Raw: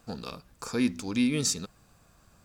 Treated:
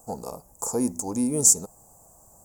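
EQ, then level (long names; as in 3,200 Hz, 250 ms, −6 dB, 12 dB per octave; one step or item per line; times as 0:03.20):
drawn EQ curve 250 Hz 0 dB, 850 Hz +12 dB, 1,400 Hz −11 dB, 3,600 Hz −24 dB, 7,000 Hz +15 dB
0.0 dB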